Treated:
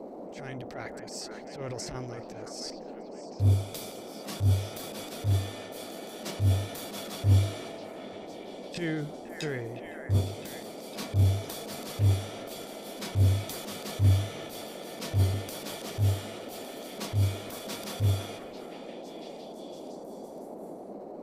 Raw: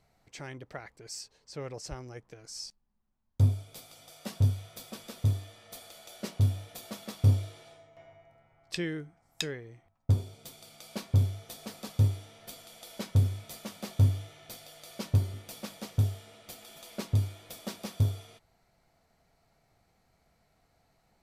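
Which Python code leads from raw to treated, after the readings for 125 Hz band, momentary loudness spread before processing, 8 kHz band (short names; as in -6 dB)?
+1.5 dB, 19 LU, +3.5 dB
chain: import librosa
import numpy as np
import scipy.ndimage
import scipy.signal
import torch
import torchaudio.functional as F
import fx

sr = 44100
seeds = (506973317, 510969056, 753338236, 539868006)

y = fx.transient(x, sr, attack_db=-12, sustain_db=8)
y = fx.echo_stepped(y, sr, ms=509, hz=1400.0, octaves=0.7, feedback_pct=70, wet_db=-5.5)
y = fx.dmg_noise_band(y, sr, seeds[0], low_hz=190.0, high_hz=710.0, level_db=-45.0)
y = y * 10.0 ** (2.5 / 20.0)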